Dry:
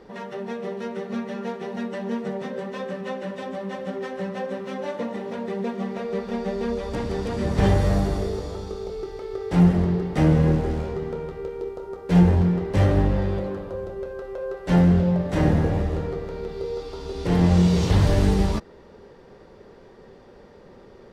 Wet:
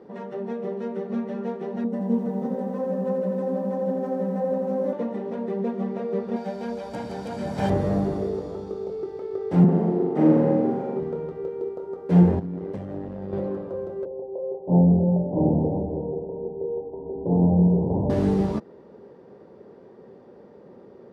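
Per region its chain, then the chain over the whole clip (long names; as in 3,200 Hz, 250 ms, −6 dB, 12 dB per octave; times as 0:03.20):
0:01.84–0:04.93: parametric band 2,700 Hz −11.5 dB 2.5 octaves + comb filter 4 ms, depth 73% + feedback echo at a low word length 84 ms, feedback 80%, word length 9 bits, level −5.5 dB
0:06.36–0:07.70: spectral tilt +2.5 dB per octave + comb filter 1.3 ms, depth 56%
0:09.64–0:11.00: high-pass filter 160 Hz 24 dB per octave + high-shelf EQ 2,200 Hz −10.5 dB + flutter between parallel walls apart 7.2 metres, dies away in 1.1 s
0:12.39–0:13.33: amplitude modulation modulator 96 Hz, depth 55% + downward compressor 12 to 1, threshold −26 dBFS
0:14.05–0:18.10: Butterworth low-pass 960 Hz 96 dB per octave + mains-hum notches 50/100/150/200/250/300/350/400 Hz
whole clip: high-pass filter 170 Hz 12 dB per octave; tilt shelving filter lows +8.5 dB, about 1,200 Hz; level −5 dB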